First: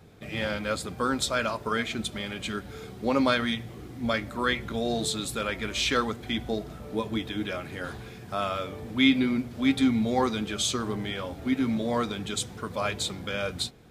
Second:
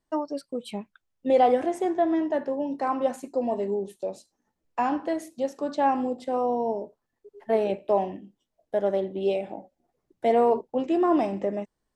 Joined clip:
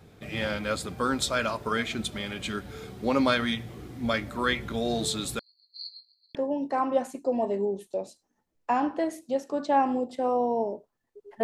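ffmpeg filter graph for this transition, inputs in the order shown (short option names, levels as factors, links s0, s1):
-filter_complex "[0:a]asettb=1/sr,asplit=3[s0][s1][s2];[s0]atrim=end=5.394[s3];[s1]atrim=start=5.39:end=6.35,asetpts=PTS-STARTPTS,afade=t=in:d=0.004:c=qsin,afade=t=out:st=0.956:d=0.004:c=qsin,asuperpass=centerf=4400:order=12:qfactor=7.7[s4];[s2]atrim=start=6.346[s5];[s3][s4]acrossfade=d=0.004:c1=hsin:c2=qsin[s6];[s6][s5]acrossfade=d=0.004:c1=qsin:c2=hsin,apad=whole_dur=11.43,atrim=end=11.43,atrim=end=6.352[s7];[1:a]atrim=start=2.438:end=7.52[s8];[s7][s8]acrossfade=d=0.004:c1=hsin:c2=hsin"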